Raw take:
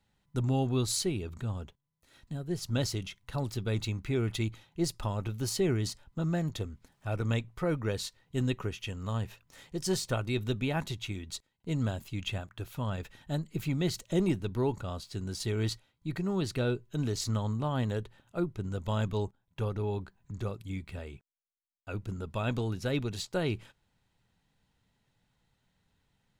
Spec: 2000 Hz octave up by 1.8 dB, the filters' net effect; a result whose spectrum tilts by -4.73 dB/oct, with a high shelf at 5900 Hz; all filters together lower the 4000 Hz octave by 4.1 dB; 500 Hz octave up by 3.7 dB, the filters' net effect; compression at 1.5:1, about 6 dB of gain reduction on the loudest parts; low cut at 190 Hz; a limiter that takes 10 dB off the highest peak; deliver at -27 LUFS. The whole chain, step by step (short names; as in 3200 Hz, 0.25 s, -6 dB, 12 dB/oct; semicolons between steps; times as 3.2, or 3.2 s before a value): HPF 190 Hz; bell 500 Hz +5 dB; bell 2000 Hz +4 dB; bell 4000 Hz -8 dB; high shelf 5900 Hz +4.5 dB; compressor 1.5:1, threshold -39 dBFS; gain +14 dB; limiter -15 dBFS